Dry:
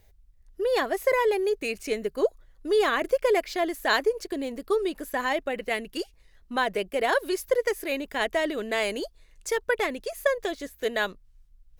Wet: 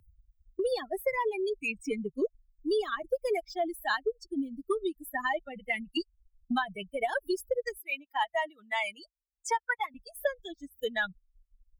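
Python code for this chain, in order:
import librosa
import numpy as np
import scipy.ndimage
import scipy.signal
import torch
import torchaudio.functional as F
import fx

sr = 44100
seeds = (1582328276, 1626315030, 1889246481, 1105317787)

y = fx.bin_expand(x, sr, power=3.0)
y = fx.highpass_res(y, sr, hz=970.0, q=9.3, at=(7.76, 9.94), fade=0.02)
y = fx.band_squash(y, sr, depth_pct=100)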